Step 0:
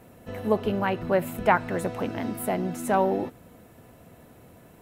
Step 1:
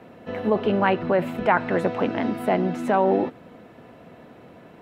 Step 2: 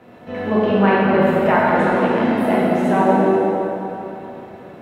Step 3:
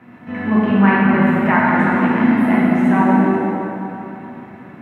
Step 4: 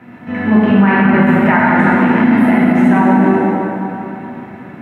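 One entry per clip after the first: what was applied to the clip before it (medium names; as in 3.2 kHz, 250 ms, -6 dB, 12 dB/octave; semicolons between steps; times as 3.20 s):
three-band isolator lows -13 dB, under 150 Hz, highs -22 dB, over 4.5 kHz; in parallel at -1 dB: compressor with a negative ratio -25 dBFS, ratio -0.5
plate-style reverb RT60 3.2 s, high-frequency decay 0.7×, DRR -7 dB; trim -1.5 dB
ten-band graphic EQ 125 Hz +7 dB, 250 Hz +11 dB, 500 Hz -8 dB, 1 kHz +6 dB, 2 kHz +10 dB, 4 kHz -4 dB; trim -5 dB
band-stop 1.1 kHz, Q 12; loudness maximiser +6.5 dB; trim -1 dB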